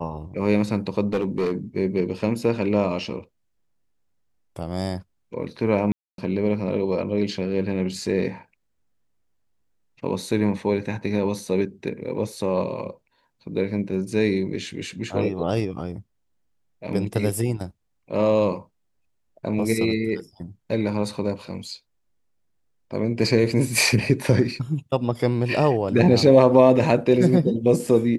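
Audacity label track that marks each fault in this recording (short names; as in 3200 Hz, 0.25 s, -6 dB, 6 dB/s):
1.130000	1.530000	clipped -18.5 dBFS
5.920000	6.180000	gap 0.262 s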